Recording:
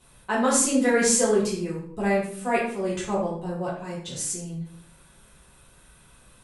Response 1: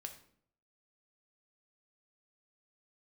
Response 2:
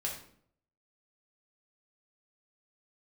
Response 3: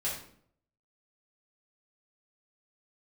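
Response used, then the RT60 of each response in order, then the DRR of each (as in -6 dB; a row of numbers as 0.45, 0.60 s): 3; 0.60, 0.60, 0.60 s; 4.5, -3.0, -8.5 dB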